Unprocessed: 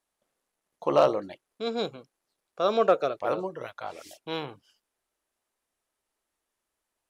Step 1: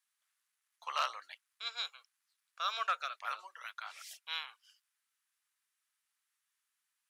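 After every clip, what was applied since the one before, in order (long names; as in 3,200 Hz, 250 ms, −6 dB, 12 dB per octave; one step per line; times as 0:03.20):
high-pass filter 1,300 Hz 24 dB per octave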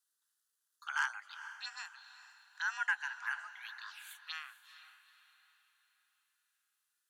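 phaser swept by the level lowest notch 330 Hz, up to 3,600 Hz, full sweep at −38.5 dBFS
frequency shifter +300 Hz
feedback delay with all-pass diffusion 450 ms, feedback 43%, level −13 dB
level +2 dB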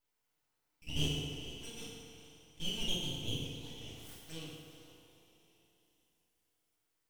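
phaser with its sweep stopped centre 600 Hz, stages 8
full-wave rectification
feedback delay network reverb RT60 2.1 s, low-frequency decay 0.7×, high-frequency decay 0.6×, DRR −6.5 dB
level −1 dB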